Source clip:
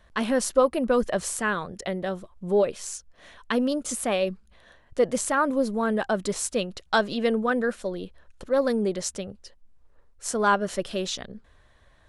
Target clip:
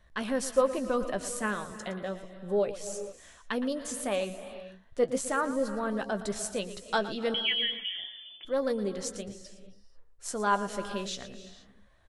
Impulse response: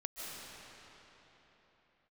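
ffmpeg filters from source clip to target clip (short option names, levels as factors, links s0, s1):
-filter_complex "[0:a]flanger=delay=0.5:depth=4.1:regen=77:speed=0.32:shape=sinusoidal,asettb=1/sr,asplit=3[s0][s1][s2];[s0]atrim=end=7.344[s3];[s1]atrim=start=7.34:end=8.45,asetpts=PTS-STARTPTS,afade=t=in:d=0.004:c=qsin,afade=t=out:st=1.106:d=0.004:c=qsin,lowpass=f=3000:t=q:w=0.5098,lowpass=f=3000:t=q:w=0.6013,lowpass=f=3000:t=q:w=0.9,lowpass=f=3000:t=q:w=2.563,afreqshift=-3500[s4];[s2]atrim=start=8.446[s5];[s3][s4]acrossfade=d=0.004:c1=hsin:c2=qsin[s6];[s6][s5]acrossfade=d=0.004:c1=qsin:c2=hsin,asplit=2[s7][s8];[s8]adelay=15,volume=0.237[s9];[s7][s9]amix=inputs=2:normalize=0,asplit=2[s10][s11];[1:a]atrim=start_sample=2205,afade=t=out:st=0.43:d=0.01,atrim=end_sample=19404,adelay=115[s12];[s11][s12]afir=irnorm=-1:irlink=0,volume=0.335[s13];[s10][s13]amix=inputs=2:normalize=0,volume=0.794"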